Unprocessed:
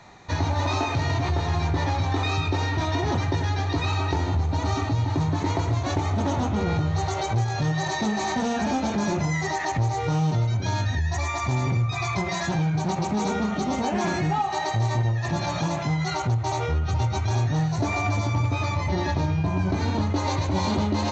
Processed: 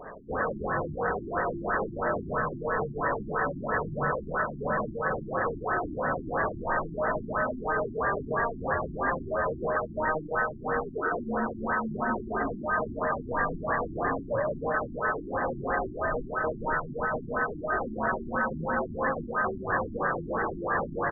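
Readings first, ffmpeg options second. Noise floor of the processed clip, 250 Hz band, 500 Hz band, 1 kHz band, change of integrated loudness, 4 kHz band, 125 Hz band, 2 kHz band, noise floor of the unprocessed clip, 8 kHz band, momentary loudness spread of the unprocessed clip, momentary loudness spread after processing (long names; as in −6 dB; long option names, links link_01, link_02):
−40 dBFS, −8.0 dB, +1.0 dB, −2.0 dB, −5.0 dB, below −40 dB, −17.0 dB, +2.0 dB, −29 dBFS, can't be measured, 2 LU, 2 LU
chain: -filter_complex "[0:a]highpass=140,acrossover=split=340[link_01][link_02];[link_01]acompressor=threshold=-35dB:ratio=6[link_03];[link_02]alimiter=limit=-22.5dB:level=0:latency=1:release=153[link_04];[link_03][link_04]amix=inputs=2:normalize=0,aeval=exprs='val(0)*sin(2*PI*1400*n/s)':channel_layout=same,aeval=exprs='0.1*sin(PI/2*2.82*val(0)/0.1)':channel_layout=same,aecho=1:1:516|1032|1548|2064|2580|3096|3612:0.316|0.187|0.11|0.0649|0.0383|0.0226|0.0133,afftfilt=real='re*lt(b*sr/1024,350*pow(2000/350,0.5+0.5*sin(2*PI*3*pts/sr)))':imag='im*lt(b*sr/1024,350*pow(2000/350,0.5+0.5*sin(2*PI*3*pts/sr)))':win_size=1024:overlap=0.75"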